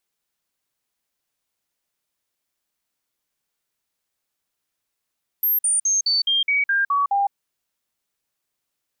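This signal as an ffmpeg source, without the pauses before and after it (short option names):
-f lavfi -i "aevalsrc='0.15*clip(min(mod(t,0.21),0.16-mod(t,0.21))/0.005,0,1)*sin(2*PI*12800*pow(2,-floor(t/0.21)/2)*mod(t,0.21))':d=1.89:s=44100"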